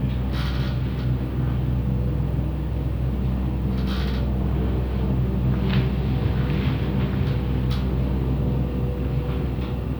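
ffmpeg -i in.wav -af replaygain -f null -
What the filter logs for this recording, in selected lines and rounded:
track_gain = +9.3 dB
track_peak = 0.228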